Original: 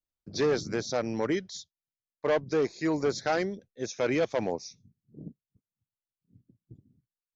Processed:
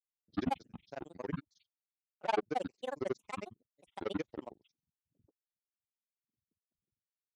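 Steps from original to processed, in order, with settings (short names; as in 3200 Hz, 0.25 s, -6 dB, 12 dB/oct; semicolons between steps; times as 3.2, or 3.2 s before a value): grains 47 ms, grains 22/s, spray 35 ms, pitch spread up and down by 12 st; upward expander 2.5:1, over -41 dBFS; gain -3 dB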